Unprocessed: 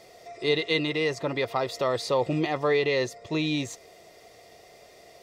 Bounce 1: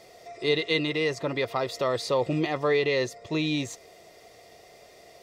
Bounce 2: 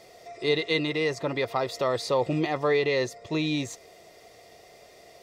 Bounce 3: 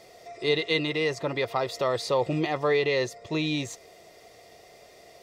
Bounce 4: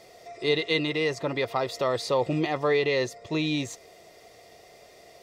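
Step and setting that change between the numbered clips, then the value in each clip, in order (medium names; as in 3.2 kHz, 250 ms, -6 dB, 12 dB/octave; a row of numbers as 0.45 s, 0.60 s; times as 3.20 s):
dynamic bell, frequency: 820 Hz, 3 kHz, 260 Hz, 9.6 kHz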